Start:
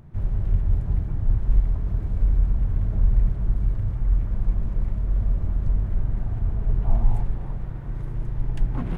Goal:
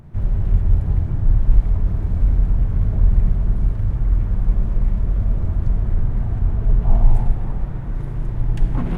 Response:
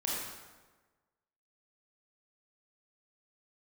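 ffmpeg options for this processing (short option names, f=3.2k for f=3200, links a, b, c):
-filter_complex "[0:a]asplit=2[a][b];[1:a]atrim=start_sample=2205,asetrate=32193,aresample=44100[c];[b][c]afir=irnorm=-1:irlink=0,volume=-11dB[d];[a][d]amix=inputs=2:normalize=0,volume=2.5dB"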